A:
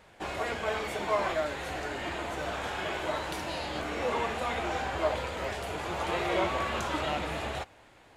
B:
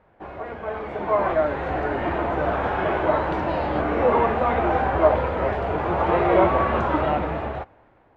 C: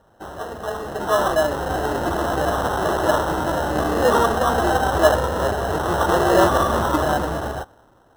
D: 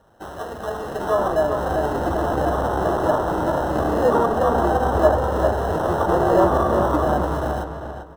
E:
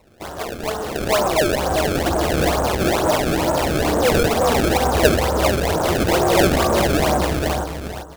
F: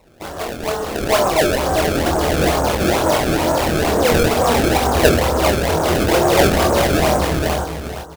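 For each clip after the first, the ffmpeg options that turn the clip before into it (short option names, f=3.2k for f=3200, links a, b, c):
-af "dynaudnorm=f=260:g=9:m=13dB,lowpass=1.3k"
-af "acrusher=samples=19:mix=1:aa=0.000001,highshelf=f=1.7k:t=q:w=1.5:g=-6.5,volume=2dB"
-filter_complex "[0:a]acrossover=split=1200[a][b];[b]acompressor=threshold=-37dB:ratio=6[c];[a][c]amix=inputs=2:normalize=0,asplit=2[d][e];[e]adelay=395,lowpass=f=3.6k:p=1,volume=-6.5dB,asplit=2[f][g];[g]adelay=395,lowpass=f=3.6k:p=1,volume=0.28,asplit=2[h][i];[i]adelay=395,lowpass=f=3.6k:p=1,volume=0.28,asplit=2[j][k];[k]adelay=395,lowpass=f=3.6k:p=1,volume=0.28[l];[d][f][h][j][l]amix=inputs=5:normalize=0"
-filter_complex "[0:a]asplit=2[a][b];[b]aeval=exprs='0.126*(abs(mod(val(0)/0.126+3,4)-2)-1)':c=same,volume=-7.5dB[c];[a][c]amix=inputs=2:normalize=0,acrusher=samples=26:mix=1:aa=0.000001:lfo=1:lforange=41.6:lforate=2.2"
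-filter_complex "[0:a]asplit=2[a][b];[b]adelay=25,volume=-5dB[c];[a][c]amix=inputs=2:normalize=0,volume=1dB"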